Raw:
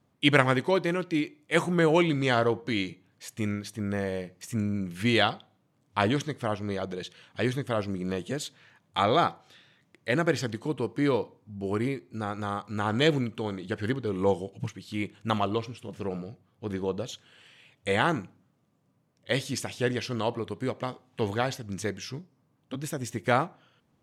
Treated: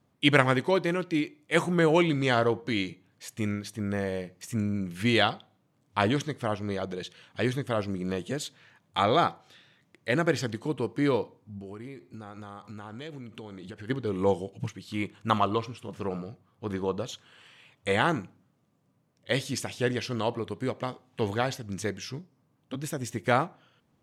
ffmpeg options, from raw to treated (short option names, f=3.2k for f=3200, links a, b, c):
-filter_complex "[0:a]asplit=3[a][b][c];[a]afade=t=out:st=11.58:d=0.02[d];[b]acompressor=threshold=-38dB:ratio=6:attack=3.2:release=140:knee=1:detection=peak,afade=t=in:st=11.58:d=0.02,afade=t=out:st=13.89:d=0.02[e];[c]afade=t=in:st=13.89:d=0.02[f];[d][e][f]amix=inputs=3:normalize=0,asettb=1/sr,asplit=3[g][h][i];[g]atrim=end=14.874[j];[h]atrim=start=14.87:end=17.93,asetpts=PTS-STARTPTS,afade=t=in:d=0.004:c=qsin,afade=t=out:st=3.056:d=0.004:c=qsin,equalizer=f=1.1k:w=2.1:g=6[k];[i]atrim=start=17.926[l];[j][k]acrossfade=d=0.004:c1=hsin:c2=qsin[m];[m][l]acrossfade=d=0.004:c1=qsin:c2=hsin"